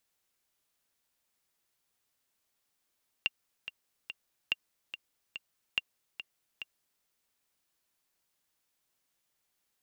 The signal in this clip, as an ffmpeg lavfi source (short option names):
-f lavfi -i "aevalsrc='pow(10,(-14.5-11.5*gte(mod(t,3*60/143),60/143))/20)*sin(2*PI*2780*mod(t,60/143))*exp(-6.91*mod(t,60/143)/0.03)':d=3.77:s=44100"